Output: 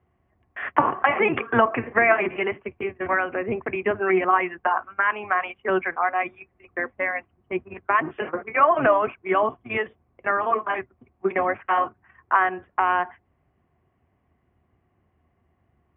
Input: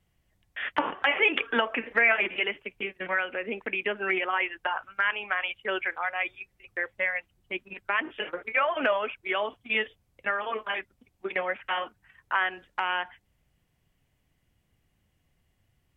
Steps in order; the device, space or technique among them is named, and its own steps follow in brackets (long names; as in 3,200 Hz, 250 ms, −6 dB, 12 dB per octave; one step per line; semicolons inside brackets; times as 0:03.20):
sub-octave bass pedal (sub-octave generator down 1 octave, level −2 dB; loudspeaker in its box 71–2,200 Hz, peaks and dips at 79 Hz +6 dB, 240 Hz +4 dB, 370 Hz +9 dB, 710 Hz +9 dB, 1,100 Hz +10 dB)
level +2 dB